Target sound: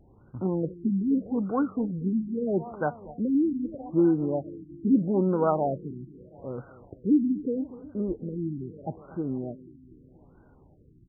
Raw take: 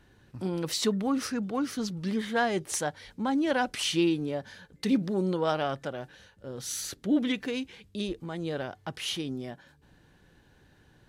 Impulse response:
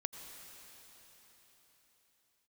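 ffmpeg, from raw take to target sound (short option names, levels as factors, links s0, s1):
-af "aecho=1:1:243|486|729|972|1215:0.133|0.0773|0.0449|0.026|0.0151,afftfilt=real='re*lt(b*sr/1024,370*pow(1600/370,0.5+0.5*sin(2*PI*0.79*pts/sr)))':imag='im*lt(b*sr/1024,370*pow(1600/370,0.5+0.5*sin(2*PI*0.79*pts/sr)))':win_size=1024:overlap=0.75,volume=1.58"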